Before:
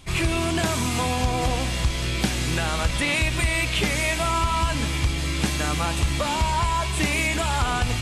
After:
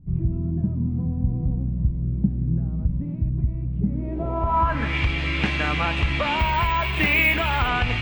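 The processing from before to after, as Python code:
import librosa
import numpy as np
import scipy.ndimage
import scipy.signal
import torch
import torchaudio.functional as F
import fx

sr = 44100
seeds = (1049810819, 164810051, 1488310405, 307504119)

y = fx.filter_sweep_lowpass(x, sr, from_hz=180.0, to_hz=2500.0, start_s=3.84, end_s=4.98, q=2.2)
y = fx.resample_bad(y, sr, factor=2, down='none', up='hold', at=(6.39, 7.68))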